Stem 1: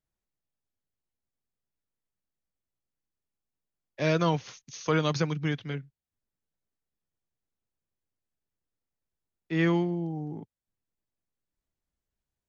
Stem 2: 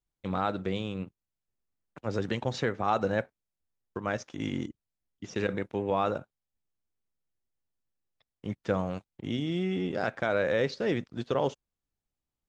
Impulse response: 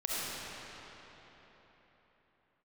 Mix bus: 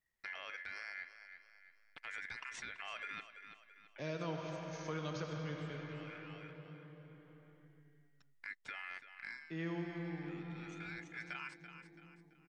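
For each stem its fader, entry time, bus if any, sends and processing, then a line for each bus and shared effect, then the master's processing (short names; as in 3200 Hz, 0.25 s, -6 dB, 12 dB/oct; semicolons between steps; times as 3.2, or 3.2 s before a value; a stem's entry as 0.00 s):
-9.0 dB, 0.00 s, send -4 dB, no echo send, dry
+1.0 dB, 0.00 s, no send, echo send -14 dB, limiter -24.5 dBFS, peak gain reduction 10 dB; ring modulator 1900 Hz; auto duck -20 dB, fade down 0.20 s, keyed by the first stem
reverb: on, RT60 4.2 s, pre-delay 25 ms
echo: feedback echo 0.334 s, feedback 27%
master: compressor 1.5:1, threshold -59 dBFS, peak gain reduction 12.5 dB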